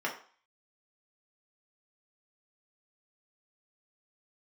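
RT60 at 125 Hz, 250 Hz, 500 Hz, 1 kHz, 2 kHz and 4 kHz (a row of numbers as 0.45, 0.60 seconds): 0.30, 0.35, 0.40, 0.50, 0.45, 0.45 seconds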